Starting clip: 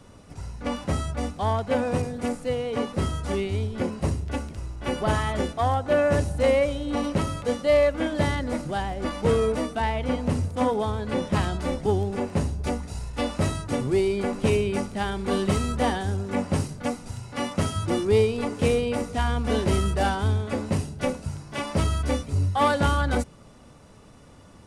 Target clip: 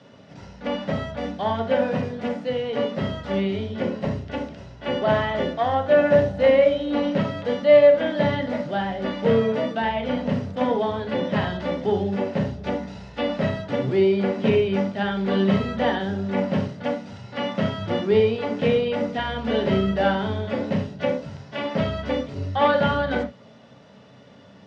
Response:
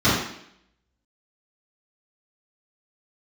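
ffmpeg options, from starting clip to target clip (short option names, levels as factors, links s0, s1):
-filter_complex "[0:a]acrossover=split=3500[s0][s1];[s1]acompressor=threshold=0.00355:ratio=4:attack=1:release=60[s2];[s0][s2]amix=inputs=2:normalize=0,highpass=190,equalizer=f=320:t=q:w=4:g=-9,equalizer=f=580:t=q:w=4:g=5,equalizer=f=1200:t=q:w=4:g=-6,equalizer=f=1800:t=q:w=4:g=6,equalizer=f=3200:t=q:w=4:g=6,lowpass=f=5300:w=0.5412,lowpass=f=5300:w=1.3066,asplit=2[s3][s4];[1:a]atrim=start_sample=2205,atrim=end_sample=3969[s5];[s4][s5]afir=irnorm=-1:irlink=0,volume=0.0708[s6];[s3][s6]amix=inputs=2:normalize=0"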